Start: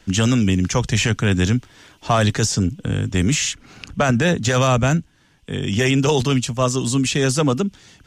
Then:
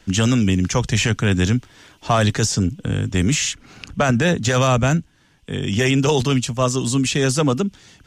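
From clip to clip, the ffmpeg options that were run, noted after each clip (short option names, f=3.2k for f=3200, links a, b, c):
-af anull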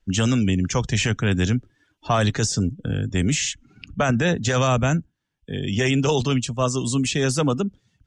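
-af "afftdn=nr=21:nf=-37,volume=-3dB"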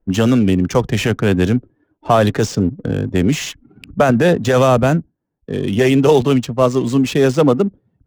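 -af "equalizer=f=460:w=0.45:g=11,adynamicsmooth=sensitivity=5:basefreq=960"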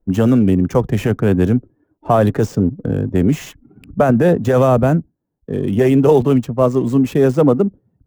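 -af "equalizer=f=4.2k:t=o:w=2.5:g=-13,volume=1dB"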